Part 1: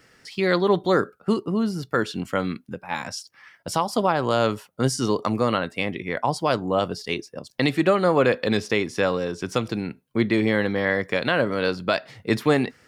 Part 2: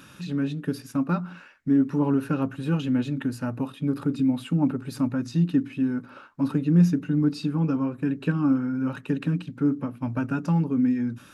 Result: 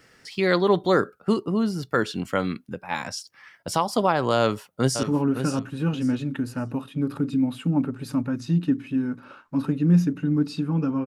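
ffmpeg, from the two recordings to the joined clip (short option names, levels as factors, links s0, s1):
-filter_complex "[0:a]apad=whole_dur=11.06,atrim=end=11.06,atrim=end=5.032[s0];[1:a]atrim=start=1.888:end=7.92[s1];[s0][s1]acrossfade=d=0.004:c1=hsin:c2=hsin,asplit=2[s2][s3];[s3]afade=t=in:st=4.39:d=0.01,afade=t=out:st=5.03:d=0.01,aecho=0:1:560|1120|1680:0.375837|0.0939594|0.0234898[s4];[s2][s4]amix=inputs=2:normalize=0"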